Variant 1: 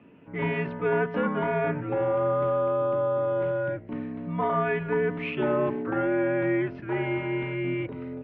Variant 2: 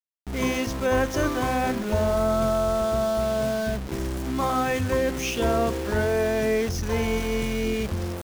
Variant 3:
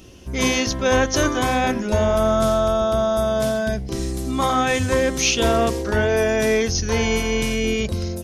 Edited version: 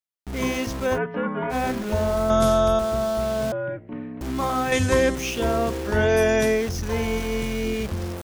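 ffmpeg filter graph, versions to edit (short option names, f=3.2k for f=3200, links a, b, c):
-filter_complex "[0:a]asplit=2[a][b];[2:a]asplit=3[c][d][e];[1:a]asplit=6[f][g][h][i][j][k];[f]atrim=end=0.99[l];[a]atrim=start=0.93:end=1.55[m];[g]atrim=start=1.49:end=2.302[n];[c]atrim=start=2.298:end=2.792[o];[h]atrim=start=2.788:end=3.522[p];[b]atrim=start=3.518:end=4.212[q];[i]atrim=start=4.208:end=4.722[r];[d]atrim=start=4.718:end=5.152[s];[j]atrim=start=5.148:end=6.07[t];[e]atrim=start=5.83:end=6.62[u];[k]atrim=start=6.38[v];[l][m]acrossfade=d=0.06:c1=tri:c2=tri[w];[w][n]acrossfade=d=0.06:c1=tri:c2=tri[x];[x][o]acrossfade=d=0.004:c1=hsin:c2=hsin[y];[y][p]acrossfade=d=0.004:c1=hsin:c2=hsin[z];[z][q]acrossfade=d=0.004:c1=hsin:c2=hsin[aa];[aa][r]acrossfade=d=0.004:c1=hsin:c2=hsin[ab];[ab][s]acrossfade=d=0.004:c1=hsin:c2=hsin[ac];[ac][t]acrossfade=d=0.004:c1=hsin:c2=hsin[ad];[ad][u]acrossfade=d=0.24:c1=tri:c2=tri[ae];[ae][v]acrossfade=d=0.24:c1=tri:c2=tri"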